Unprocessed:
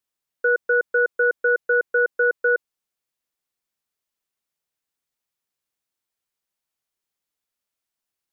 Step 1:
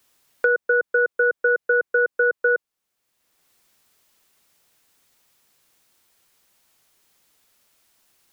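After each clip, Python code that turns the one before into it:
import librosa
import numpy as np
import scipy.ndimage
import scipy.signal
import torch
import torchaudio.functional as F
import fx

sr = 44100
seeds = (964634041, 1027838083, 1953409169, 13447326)

y = fx.band_squash(x, sr, depth_pct=70)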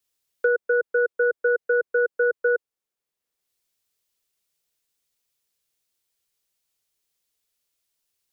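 y = fx.peak_eq(x, sr, hz=450.0, db=6.0, octaves=0.67)
y = fx.band_widen(y, sr, depth_pct=40)
y = y * librosa.db_to_amplitude(-5.5)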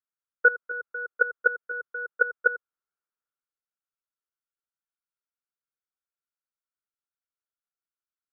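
y = fx.level_steps(x, sr, step_db=19)
y = fx.lowpass_res(y, sr, hz=1400.0, q=7.0)
y = y * librosa.db_to_amplitude(-3.5)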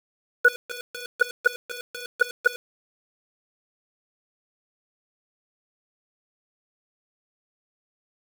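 y = np.where(np.abs(x) >= 10.0 ** (-29.0 / 20.0), x, 0.0)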